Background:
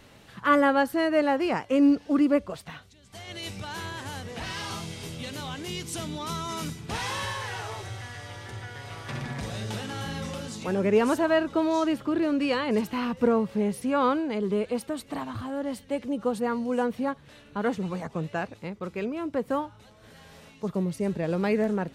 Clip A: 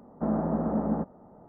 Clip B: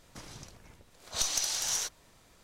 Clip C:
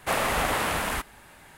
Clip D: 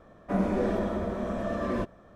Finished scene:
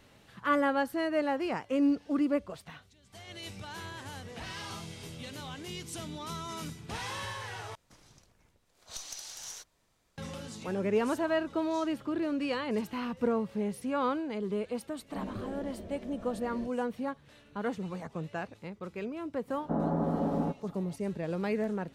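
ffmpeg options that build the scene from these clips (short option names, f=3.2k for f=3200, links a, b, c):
-filter_complex "[0:a]volume=-6.5dB[a];[4:a]equalizer=f=1.2k:w=1.6:g=-13.5[b];[1:a]aecho=1:1:7.1:0.52[c];[a]asplit=2[d][e];[d]atrim=end=7.754[f];[2:a]atrim=end=2.43,asetpts=PTS-STARTPTS,volume=-12dB[g];[e]atrim=start=10.176[h];[b]atrim=end=2.15,asetpts=PTS-STARTPTS,volume=-12.5dB,afade=t=in:d=0.004:c=hsin,afade=t=out:st=2.146:d=0.004:c=hsin,adelay=14830[i];[c]atrim=end=1.48,asetpts=PTS-STARTPTS,volume=-2dB,afade=t=in:d=0.004:c=hsin,afade=t=out:st=1.476:d=0.004:c=hsin,adelay=19480[j];[f][g]acrossfade=d=0.004:c1=hsin:c2=hsin[k];[k][h]acrossfade=d=0.004:c1=hsin:c2=hsin[l];[l][i][j]amix=inputs=3:normalize=0"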